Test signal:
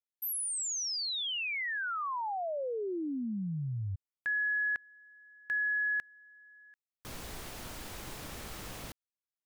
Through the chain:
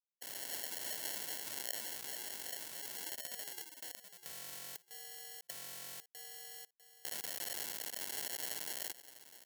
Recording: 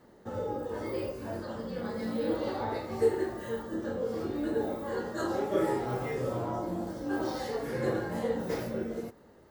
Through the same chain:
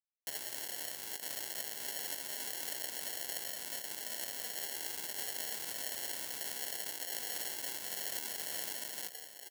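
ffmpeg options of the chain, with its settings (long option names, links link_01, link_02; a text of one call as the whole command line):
ffmpeg -i in.wav -filter_complex "[0:a]asplit=2[link_01][link_02];[link_02]adelay=46,volume=-9.5dB[link_03];[link_01][link_03]amix=inputs=2:normalize=0,acrossover=split=4100[link_04][link_05];[link_05]acompressor=threshold=-43dB:ratio=4:attack=1:release=60[link_06];[link_04][link_06]amix=inputs=2:normalize=0,equalizer=frequency=125:width_type=o:width=1:gain=-11,equalizer=frequency=250:width_type=o:width=1:gain=-9,equalizer=frequency=1000:width_type=o:width=1:gain=-6,equalizer=frequency=2000:width_type=o:width=1:gain=-9,equalizer=frequency=4000:width_type=o:width=1:gain=-8,equalizer=frequency=8000:width_type=o:width=1:gain=6,equalizer=frequency=16000:width_type=o:width=1:gain=5,acrusher=bits=6:mix=0:aa=0.000001,aecho=1:1:649|1298|1947:0.178|0.0427|0.0102,afftfilt=real='re*lt(hypot(re,im),0.0501)':imag='im*lt(hypot(re,im),0.0501)':win_size=1024:overlap=0.75,acrusher=samples=36:mix=1:aa=0.000001,aderivative,volume=14dB" out.wav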